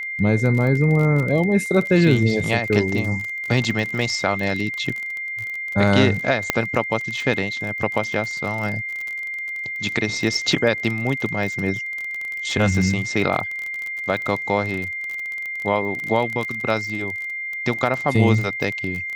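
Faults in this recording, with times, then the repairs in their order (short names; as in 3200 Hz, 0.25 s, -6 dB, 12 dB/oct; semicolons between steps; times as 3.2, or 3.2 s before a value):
crackle 29/s -25 dBFS
tone 2100 Hz -26 dBFS
6.5 pop -2 dBFS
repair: de-click; notch 2100 Hz, Q 30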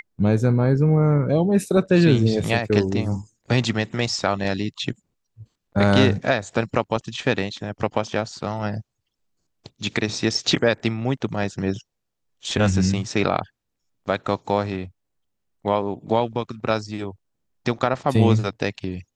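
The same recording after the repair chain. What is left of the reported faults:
none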